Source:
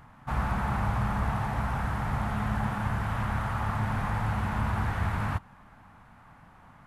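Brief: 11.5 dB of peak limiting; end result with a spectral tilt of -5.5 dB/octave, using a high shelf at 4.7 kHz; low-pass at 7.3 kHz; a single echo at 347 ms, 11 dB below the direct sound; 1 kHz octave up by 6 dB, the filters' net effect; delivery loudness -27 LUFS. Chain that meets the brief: low-pass 7.3 kHz; peaking EQ 1 kHz +7 dB; treble shelf 4.7 kHz +5.5 dB; peak limiter -25.5 dBFS; delay 347 ms -11 dB; trim +7 dB

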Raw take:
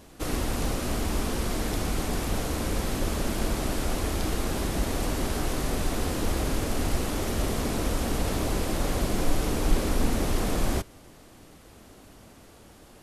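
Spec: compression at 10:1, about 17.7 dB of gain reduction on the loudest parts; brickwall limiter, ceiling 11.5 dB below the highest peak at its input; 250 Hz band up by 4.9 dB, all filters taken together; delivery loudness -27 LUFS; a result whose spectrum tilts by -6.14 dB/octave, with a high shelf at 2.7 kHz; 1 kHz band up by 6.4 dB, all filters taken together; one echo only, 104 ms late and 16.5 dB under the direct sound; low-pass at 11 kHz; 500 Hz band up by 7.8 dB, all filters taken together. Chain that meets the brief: low-pass 11 kHz; peaking EQ 250 Hz +3.5 dB; peaking EQ 500 Hz +7.5 dB; peaking EQ 1 kHz +6.5 dB; treble shelf 2.7 kHz -8 dB; compression 10:1, threshold -33 dBFS; peak limiter -34.5 dBFS; delay 104 ms -16.5 dB; trim +17 dB

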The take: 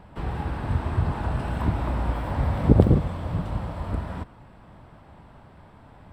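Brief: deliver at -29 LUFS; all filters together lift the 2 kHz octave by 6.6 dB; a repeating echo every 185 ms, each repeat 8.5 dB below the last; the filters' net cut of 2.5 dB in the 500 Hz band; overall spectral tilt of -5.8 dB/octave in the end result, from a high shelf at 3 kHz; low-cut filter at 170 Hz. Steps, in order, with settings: high-pass 170 Hz; peaking EQ 500 Hz -3.5 dB; peaking EQ 2 kHz +7.5 dB; treble shelf 3 kHz +4 dB; feedback delay 185 ms, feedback 38%, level -8.5 dB

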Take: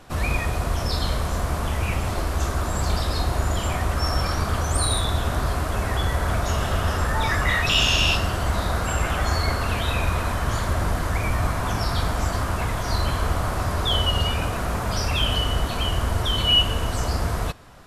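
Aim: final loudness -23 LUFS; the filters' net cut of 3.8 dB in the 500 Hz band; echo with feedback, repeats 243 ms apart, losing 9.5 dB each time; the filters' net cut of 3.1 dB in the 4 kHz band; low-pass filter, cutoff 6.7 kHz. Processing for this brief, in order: low-pass 6.7 kHz; peaking EQ 500 Hz -5 dB; peaking EQ 4 kHz -4.5 dB; feedback delay 243 ms, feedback 33%, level -9.5 dB; trim +1.5 dB

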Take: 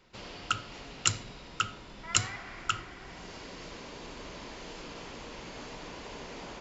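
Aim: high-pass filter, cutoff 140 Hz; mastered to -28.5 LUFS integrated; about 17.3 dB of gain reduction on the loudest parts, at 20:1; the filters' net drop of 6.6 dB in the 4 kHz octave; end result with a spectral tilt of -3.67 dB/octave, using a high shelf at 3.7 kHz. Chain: high-pass 140 Hz; treble shelf 3.7 kHz -3.5 dB; peaking EQ 4 kHz -8 dB; compression 20:1, threshold -43 dBFS; trim +20 dB

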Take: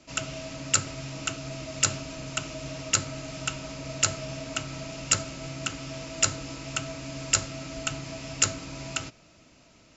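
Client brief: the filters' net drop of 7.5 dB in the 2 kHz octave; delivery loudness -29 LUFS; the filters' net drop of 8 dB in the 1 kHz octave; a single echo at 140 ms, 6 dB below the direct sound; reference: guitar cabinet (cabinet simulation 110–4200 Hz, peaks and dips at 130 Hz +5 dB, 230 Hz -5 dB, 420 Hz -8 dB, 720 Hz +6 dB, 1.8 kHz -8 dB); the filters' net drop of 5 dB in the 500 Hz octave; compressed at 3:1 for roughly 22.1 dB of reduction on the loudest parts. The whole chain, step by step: peaking EQ 500 Hz -6 dB; peaking EQ 1 kHz -7 dB; peaking EQ 2 kHz -7 dB; compression 3:1, threshold -50 dBFS; cabinet simulation 110–4200 Hz, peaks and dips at 130 Hz +5 dB, 230 Hz -5 dB, 420 Hz -8 dB, 720 Hz +6 dB, 1.8 kHz -8 dB; delay 140 ms -6 dB; trim +20.5 dB

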